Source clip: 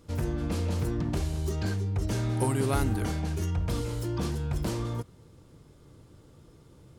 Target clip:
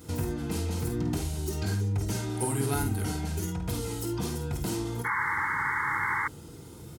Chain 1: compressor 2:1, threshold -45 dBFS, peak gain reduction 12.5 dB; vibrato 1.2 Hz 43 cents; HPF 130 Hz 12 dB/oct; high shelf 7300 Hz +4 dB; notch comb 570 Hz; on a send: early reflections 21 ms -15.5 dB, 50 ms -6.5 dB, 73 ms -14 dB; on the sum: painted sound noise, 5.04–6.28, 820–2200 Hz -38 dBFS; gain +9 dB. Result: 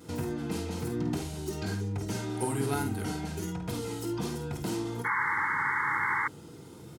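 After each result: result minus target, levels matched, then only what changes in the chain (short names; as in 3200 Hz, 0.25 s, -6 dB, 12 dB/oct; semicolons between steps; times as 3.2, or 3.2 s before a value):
8000 Hz band -3.5 dB; 125 Hz band -3.0 dB
change: high shelf 7300 Hz +12.5 dB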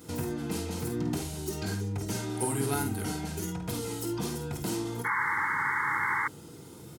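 125 Hz band -3.5 dB
change: HPF 44 Hz 12 dB/oct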